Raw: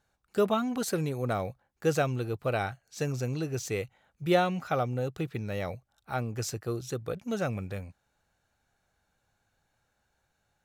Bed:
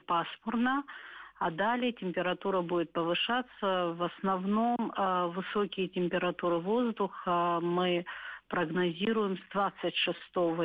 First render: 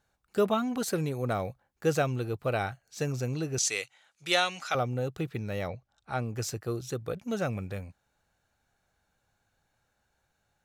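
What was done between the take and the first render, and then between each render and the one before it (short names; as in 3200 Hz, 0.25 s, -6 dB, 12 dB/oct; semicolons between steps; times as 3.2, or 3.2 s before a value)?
3.58–4.75 weighting filter ITU-R 468; 5.67–6.21 LPF 4900 Hz -> 11000 Hz 24 dB/oct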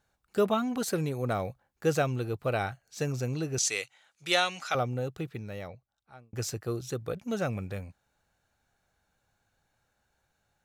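4.81–6.33 fade out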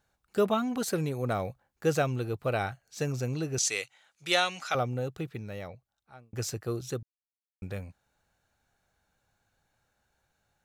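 7.03–7.62 mute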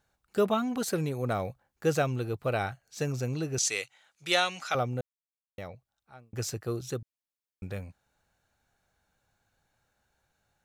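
5.01–5.58 mute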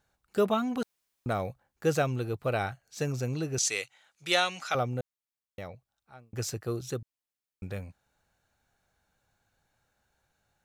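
0.83–1.26 room tone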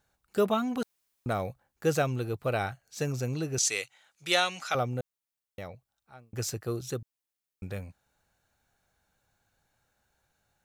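high shelf 8300 Hz +4 dB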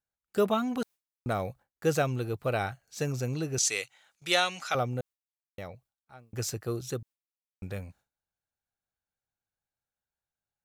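gate with hold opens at -53 dBFS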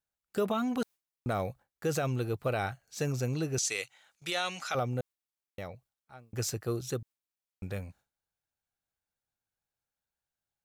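limiter -21 dBFS, peak gain reduction 10.5 dB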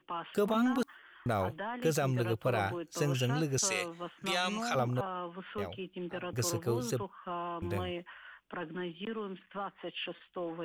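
add bed -9 dB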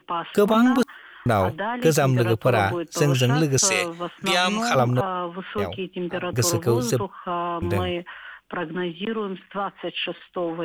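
gain +11.5 dB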